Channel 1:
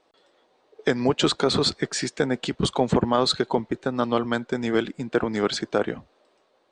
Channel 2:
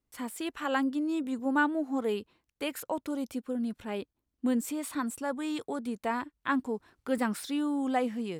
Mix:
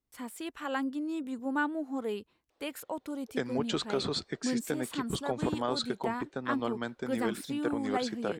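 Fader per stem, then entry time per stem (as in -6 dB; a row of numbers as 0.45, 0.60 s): -11.0, -4.0 dB; 2.50, 0.00 s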